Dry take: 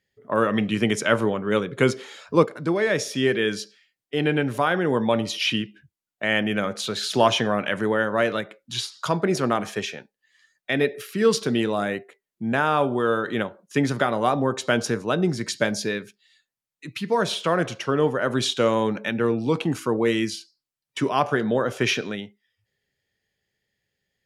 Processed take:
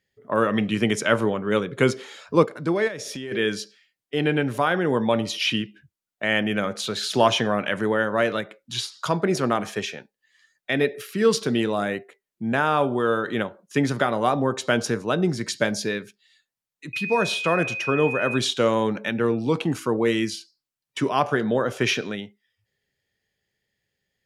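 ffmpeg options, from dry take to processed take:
ffmpeg -i in.wav -filter_complex "[0:a]asplit=3[link_01][link_02][link_03];[link_01]afade=type=out:start_time=2.87:duration=0.02[link_04];[link_02]acompressor=threshold=-29dB:ratio=12:attack=3.2:release=140:knee=1:detection=peak,afade=type=in:start_time=2.87:duration=0.02,afade=type=out:start_time=3.31:duration=0.02[link_05];[link_03]afade=type=in:start_time=3.31:duration=0.02[link_06];[link_04][link_05][link_06]amix=inputs=3:normalize=0,asettb=1/sr,asplit=3[link_07][link_08][link_09];[link_07]atrim=end=16.934[link_10];[link_08]atrim=start=16.93:end=18.38,asetpts=PTS-STARTPTS,afade=type=in:duration=0.004:curve=qsin,afade=type=out:start_time=1.446:duration=0.004:curve=qsin,aeval=exprs='val(0)+0.0398*sin(2*PI*2500*n/s)':channel_layout=same[link_11];[link_09]atrim=start=18.376[link_12];[link_10][link_11]acrossfade=duration=0.004:curve1=hsin:curve2=qsin[link_13];[link_13][link_12]acrossfade=duration=0.004:curve1=qsin:curve2=hsin" out.wav

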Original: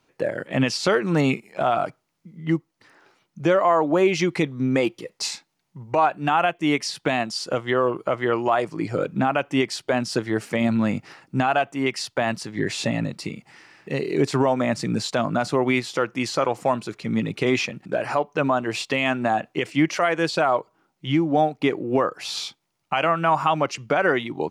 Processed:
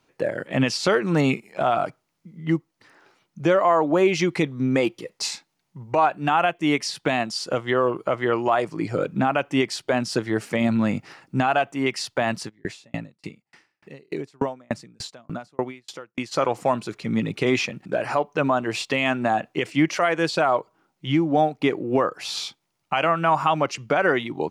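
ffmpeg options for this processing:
ffmpeg -i in.wav -filter_complex "[0:a]asplit=3[link_01][link_02][link_03];[link_01]afade=type=out:start_time=12.48:duration=0.02[link_04];[link_02]aeval=exprs='val(0)*pow(10,-40*if(lt(mod(3.4*n/s,1),2*abs(3.4)/1000),1-mod(3.4*n/s,1)/(2*abs(3.4)/1000),(mod(3.4*n/s,1)-2*abs(3.4)/1000)/(1-2*abs(3.4)/1000))/20)':channel_layout=same,afade=type=in:start_time=12.48:duration=0.02,afade=type=out:start_time=16.31:duration=0.02[link_05];[link_03]afade=type=in:start_time=16.31:duration=0.02[link_06];[link_04][link_05][link_06]amix=inputs=3:normalize=0" out.wav

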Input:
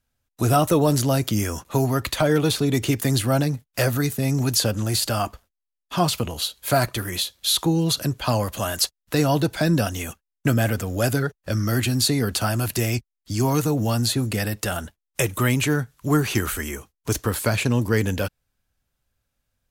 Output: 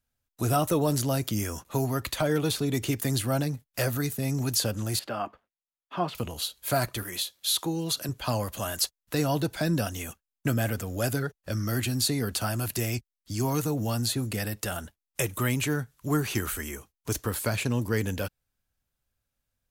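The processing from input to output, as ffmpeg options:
ffmpeg -i in.wav -filter_complex "[0:a]asettb=1/sr,asplit=3[link_01][link_02][link_03];[link_01]atrim=end=4.994[link_04];[link_02]atrim=start=4.99:end=6.15,asetpts=PTS-STARTPTS,afade=type=in:duration=0.004:curve=qsin,afade=type=out:start_time=1.156:duration=0.004:curve=qsin,acrossover=split=170 3000:gain=0.112 1 0.0631[link_05][link_06][link_07];[link_05][link_06][link_07]amix=inputs=3:normalize=0[link_08];[link_03]atrim=start=6.146[link_09];[link_04][link_08]acrossfade=duration=0.004:curve1=hsin:curve2=qsin[link_10];[link_10][link_09]acrossfade=duration=0.004:curve1=qsin:curve2=hsin,asettb=1/sr,asplit=3[link_11][link_12][link_13];[link_11]atrim=end=7.034[link_14];[link_12]atrim=start=7.03:end=8.09,asetpts=PTS-STARTPTS,afade=type=in:duration=0.004:curve=qsin,afade=type=out:start_time=1.056:duration=0.004:curve=qsin,highpass=frequency=250:poles=1[link_15];[link_13]atrim=start=8.086[link_16];[link_14][link_15]acrossfade=duration=0.004:curve1=hsin:curve2=qsin[link_17];[link_17][link_16]acrossfade=duration=0.004:curve1=qsin:curve2=hsin,highshelf=frequency=9300:gain=4.5,volume=-6.5dB" out.wav

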